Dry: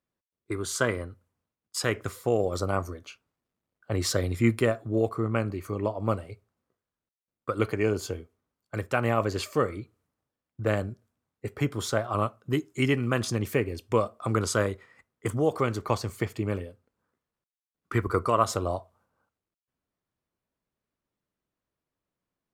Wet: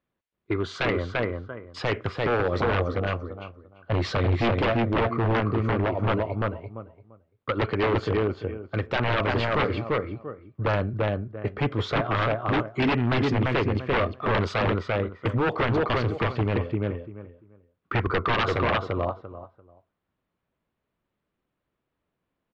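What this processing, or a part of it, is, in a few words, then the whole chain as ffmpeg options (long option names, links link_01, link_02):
synthesiser wavefolder: -filter_complex "[0:a]asplit=2[link_01][link_02];[link_02]adelay=342,lowpass=frequency=2300:poles=1,volume=-3dB,asplit=2[link_03][link_04];[link_04]adelay=342,lowpass=frequency=2300:poles=1,volume=0.2,asplit=2[link_05][link_06];[link_06]adelay=342,lowpass=frequency=2300:poles=1,volume=0.2[link_07];[link_01][link_03][link_05][link_07]amix=inputs=4:normalize=0,aeval=exprs='0.075*(abs(mod(val(0)/0.075+3,4)-2)-1)':channel_layout=same,lowpass=frequency=3600:width=0.5412,lowpass=frequency=3600:width=1.3066,volume=5.5dB"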